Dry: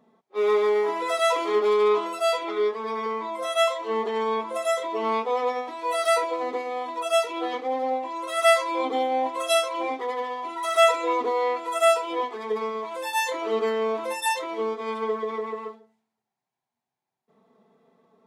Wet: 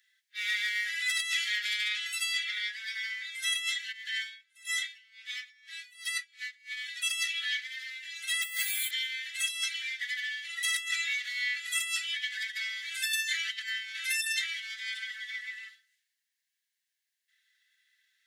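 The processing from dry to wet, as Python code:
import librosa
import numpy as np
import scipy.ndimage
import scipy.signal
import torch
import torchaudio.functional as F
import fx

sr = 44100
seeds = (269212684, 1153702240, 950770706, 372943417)

y = fx.tremolo_db(x, sr, hz=fx.line((3.91, 1.2), (6.76, 3.8)), depth_db=29, at=(3.91, 6.76), fade=0.02)
y = fx.resample_bad(y, sr, factor=4, down='filtered', up='hold', at=(8.42, 8.91))
y = fx.over_compress(y, sr, threshold_db=-27.0, ratio=-0.5, at=(12.12, 14.79), fade=0.02)
y = scipy.signal.sosfilt(scipy.signal.butter(16, 1600.0, 'highpass', fs=sr, output='sos'), y)
y = fx.notch(y, sr, hz=2400.0, q=10.0)
y = fx.over_compress(y, sr, threshold_db=-36.0, ratio=-1.0)
y = y * librosa.db_to_amplitude(5.5)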